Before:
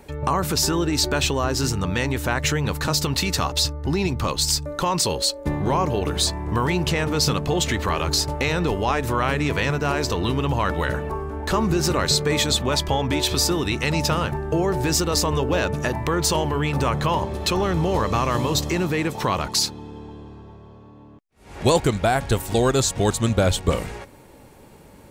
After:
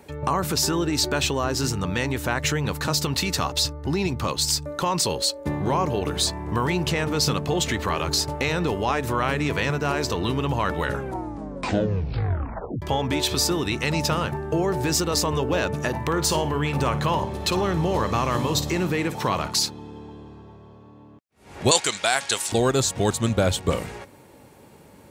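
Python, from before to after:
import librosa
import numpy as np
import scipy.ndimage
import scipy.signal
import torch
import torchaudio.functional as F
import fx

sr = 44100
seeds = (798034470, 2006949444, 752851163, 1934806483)

y = fx.room_flutter(x, sr, wall_m=9.5, rt60_s=0.25, at=(15.88, 19.57))
y = fx.weighting(y, sr, curve='ITU-R 468', at=(21.71, 22.52))
y = fx.edit(y, sr, fx.tape_stop(start_s=10.84, length_s=1.98), tone=tone)
y = scipy.signal.sosfilt(scipy.signal.butter(2, 79.0, 'highpass', fs=sr, output='sos'), y)
y = F.gain(torch.from_numpy(y), -1.5).numpy()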